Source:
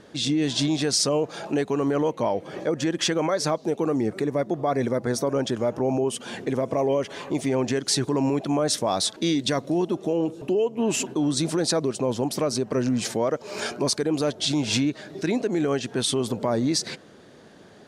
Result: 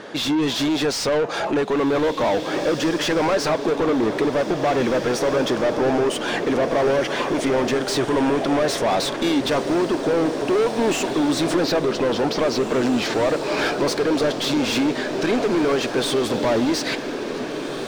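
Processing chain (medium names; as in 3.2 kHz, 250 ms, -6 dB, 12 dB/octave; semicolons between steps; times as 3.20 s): 11.64–13.79 s: low-pass 5.4 kHz 24 dB/octave; overdrive pedal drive 26 dB, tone 2.2 kHz, clips at -10.5 dBFS; echo that smears into a reverb 1992 ms, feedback 62%, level -9 dB; trim -2 dB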